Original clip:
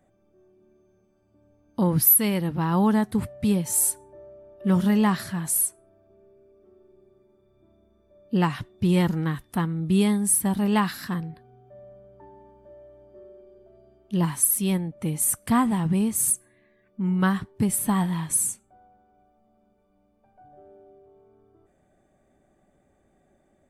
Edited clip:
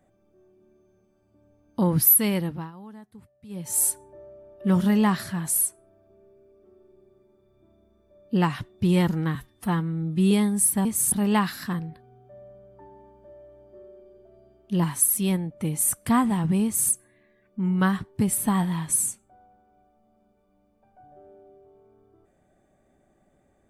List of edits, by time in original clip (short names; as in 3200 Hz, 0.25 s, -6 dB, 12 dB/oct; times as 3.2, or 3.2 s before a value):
2.39–3.82 dip -23 dB, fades 0.33 s
9.35–9.99 stretch 1.5×
16.05–16.32 copy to 10.53